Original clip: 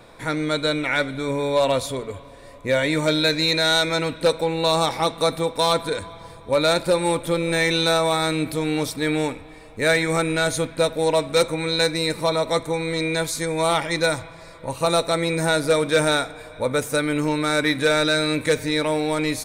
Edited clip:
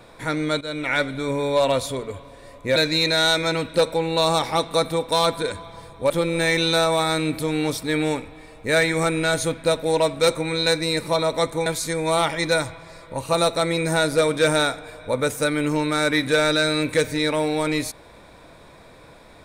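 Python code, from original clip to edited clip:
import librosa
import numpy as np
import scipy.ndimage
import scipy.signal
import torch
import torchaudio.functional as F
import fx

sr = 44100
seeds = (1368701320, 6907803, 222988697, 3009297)

y = fx.edit(x, sr, fx.fade_in_from(start_s=0.61, length_s=0.3, floor_db=-15.5),
    fx.cut(start_s=2.76, length_s=0.47),
    fx.cut(start_s=6.57, length_s=0.66),
    fx.cut(start_s=12.79, length_s=0.39), tone=tone)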